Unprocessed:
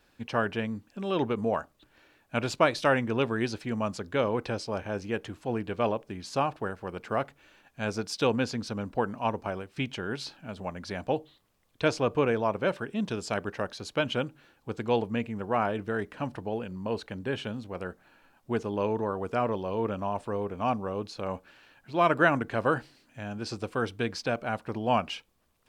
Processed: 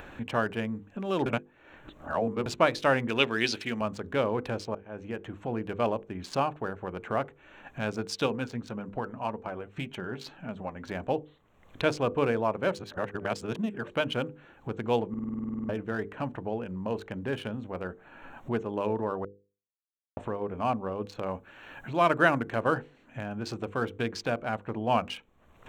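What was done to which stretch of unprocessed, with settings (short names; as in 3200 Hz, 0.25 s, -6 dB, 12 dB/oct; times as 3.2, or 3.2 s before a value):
1.26–2.46 reverse
3.08–3.81 weighting filter D
4.75–5.63 fade in, from -22.5 dB
8.26–10.92 flange 1.8 Hz, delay 4.1 ms, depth 4.8 ms, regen +51%
12.74–13.9 reverse
15.09 stutter in place 0.05 s, 12 plays
19.25–20.17 mute
21.27–22.61 high shelf 7500 Hz +10.5 dB
whole clip: Wiener smoothing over 9 samples; upward compressor, threshold -29 dBFS; notches 50/100/150/200/250/300/350/400/450/500 Hz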